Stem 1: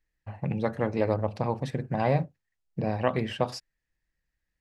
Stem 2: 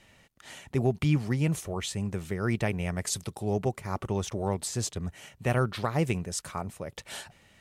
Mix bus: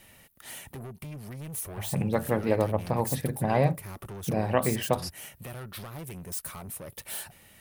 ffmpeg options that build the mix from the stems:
-filter_complex "[0:a]adelay=1500,volume=1.12[s0];[1:a]highshelf=f=8400:g=5.5,acompressor=threshold=0.0251:ratio=6,asoftclip=type=tanh:threshold=0.0112,volume=1.26[s1];[s0][s1]amix=inputs=2:normalize=0,aexciter=amount=4.5:drive=5.5:freq=9500"

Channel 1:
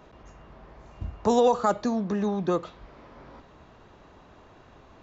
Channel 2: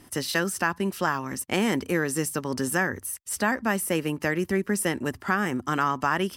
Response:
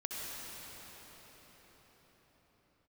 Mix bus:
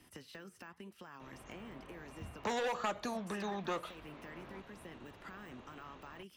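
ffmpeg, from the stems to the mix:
-filter_complex "[0:a]equalizer=f=5000:w=6.9:g=-4.5,asoftclip=type=hard:threshold=0.112,adelay=1200,volume=1[s0];[1:a]deesser=0.9,alimiter=limit=0.112:level=0:latency=1:release=65,acompressor=threshold=0.0141:ratio=6,volume=0.422[s1];[s0][s1]amix=inputs=2:normalize=0,equalizer=f=2700:w=1.3:g=6.5,acrossover=split=86|590|8000[s2][s3][s4][s5];[s2]acompressor=threshold=0.00112:ratio=4[s6];[s3]acompressor=threshold=0.0112:ratio=4[s7];[s4]acompressor=threshold=0.0316:ratio=4[s8];[s5]acompressor=threshold=0.00158:ratio=4[s9];[s6][s7][s8][s9]amix=inputs=4:normalize=0,flanger=delay=0.7:depth=9.4:regen=-85:speed=0.98:shape=triangular"

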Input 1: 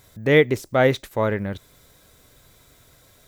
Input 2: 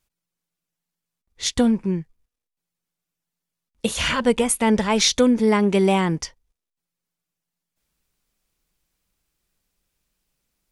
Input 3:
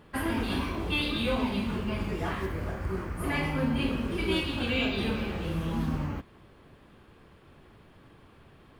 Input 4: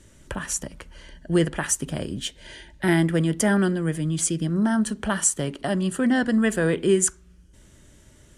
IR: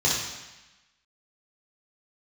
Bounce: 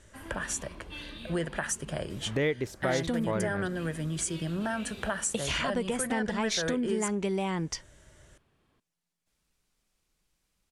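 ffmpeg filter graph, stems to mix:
-filter_complex "[0:a]adelay=2100,volume=0.891[s0];[1:a]acompressor=threshold=0.0708:ratio=1.5,adelay=1500,volume=0.891[s1];[2:a]highshelf=f=3800:g=7,volume=0.158[s2];[3:a]equalizer=f=250:t=o:w=0.67:g=-9,equalizer=f=630:t=o:w=0.67:g=6,equalizer=f=1600:t=o:w=0.67:g=5,volume=0.631[s3];[s0][s1][s2][s3]amix=inputs=4:normalize=0,lowpass=11000,acompressor=threshold=0.0355:ratio=3"

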